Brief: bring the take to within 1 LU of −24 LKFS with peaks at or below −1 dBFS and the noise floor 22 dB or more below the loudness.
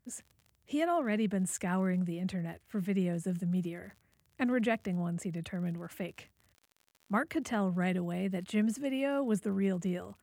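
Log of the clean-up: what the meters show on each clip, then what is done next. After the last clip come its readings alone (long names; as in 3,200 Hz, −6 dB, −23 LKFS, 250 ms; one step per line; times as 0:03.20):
crackle rate 47 per second; integrated loudness −33.5 LKFS; sample peak −15.5 dBFS; target loudness −24.0 LKFS
→ click removal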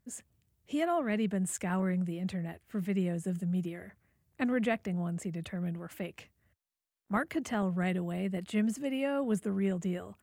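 crackle rate 0.29 per second; integrated loudness −33.5 LKFS; sample peak −16.0 dBFS; target loudness −24.0 LKFS
→ level +9.5 dB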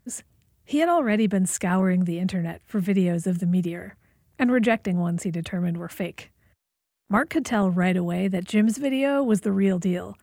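integrated loudness −24.0 LKFS; sample peak −6.5 dBFS; background noise floor −76 dBFS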